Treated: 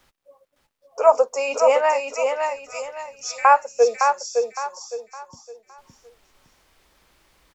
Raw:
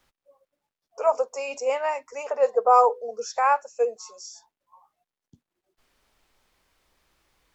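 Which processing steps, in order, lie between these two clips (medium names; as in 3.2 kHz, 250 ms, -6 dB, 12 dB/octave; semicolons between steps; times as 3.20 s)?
2.00–3.45 s: elliptic band-stop 140–2200 Hz, stop band 40 dB; feedback delay 562 ms, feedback 32%, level -5 dB; trim +7 dB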